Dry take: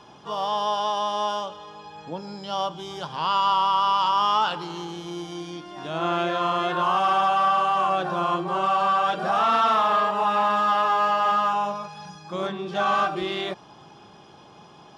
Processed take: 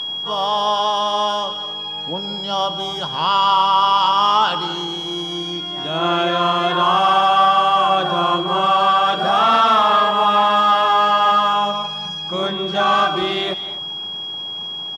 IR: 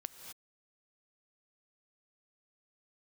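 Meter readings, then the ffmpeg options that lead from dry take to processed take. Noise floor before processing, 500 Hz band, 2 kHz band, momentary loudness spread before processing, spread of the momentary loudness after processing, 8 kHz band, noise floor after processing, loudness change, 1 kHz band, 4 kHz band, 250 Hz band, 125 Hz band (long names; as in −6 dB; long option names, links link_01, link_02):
−49 dBFS, +6.0 dB, +6.5 dB, 15 LU, 11 LU, can't be measured, −28 dBFS, +6.0 dB, +6.5 dB, +13.0 dB, +6.0 dB, +6.5 dB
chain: -filter_complex "[0:a]aeval=exprs='val(0)+0.0355*sin(2*PI*3300*n/s)':channel_layout=same,asplit=2[link_01][link_02];[1:a]atrim=start_sample=2205[link_03];[link_02][link_03]afir=irnorm=-1:irlink=0,volume=4dB[link_04];[link_01][link_04]amix=inputs=2:normalize=0,aresample=32000,aresample=44100"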